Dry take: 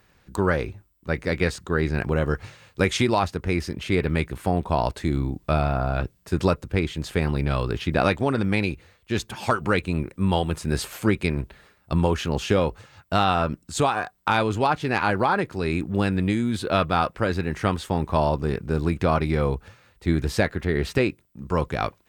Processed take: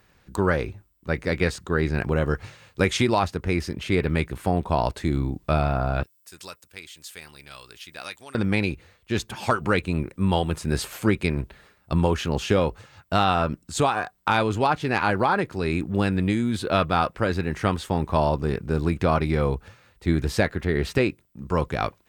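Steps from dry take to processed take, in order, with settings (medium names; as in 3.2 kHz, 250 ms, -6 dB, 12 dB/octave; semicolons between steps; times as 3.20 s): 6.03–8.35 s: pre-emphasis filter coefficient 0.97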